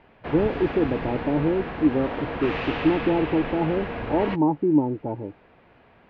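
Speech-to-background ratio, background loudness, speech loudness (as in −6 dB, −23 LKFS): 6.5 dB, −31.0 LKFS, −24.5 LKFS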